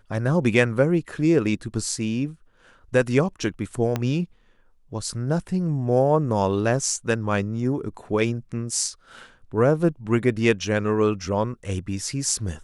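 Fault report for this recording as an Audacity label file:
3.960000	3.960000	pop -11 dBFS

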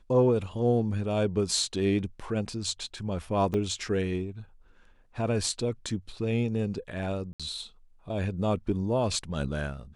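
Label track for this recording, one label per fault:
3.540000	3.540000	gap 4.1 ms
7.330000	7.400000	gap 66 ms

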